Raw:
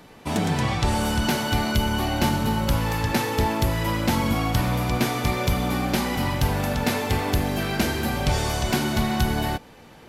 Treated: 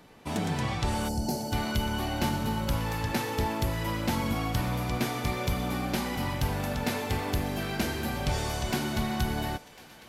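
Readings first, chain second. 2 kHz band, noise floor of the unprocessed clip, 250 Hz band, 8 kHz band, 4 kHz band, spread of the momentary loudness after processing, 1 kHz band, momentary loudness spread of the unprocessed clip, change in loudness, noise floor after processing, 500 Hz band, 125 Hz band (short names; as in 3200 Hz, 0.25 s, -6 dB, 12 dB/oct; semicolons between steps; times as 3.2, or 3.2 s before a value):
-7.0 dB, -47 dBFS, -6.5 dB, -6.5 dB, -7.0 dB, 2 LU, -6.5 dB, 1 LU, -6.5 dB, -51 dBFS, -6.5 dB, -6.5 dB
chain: spectral gain 1.09–1.53, 900–4100 Hz -18 dB; on a send: thinning echo 1.05 s, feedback 71%, high-pass 820 Hz, level -18.5 dB; on the sum: gain -6.5 dB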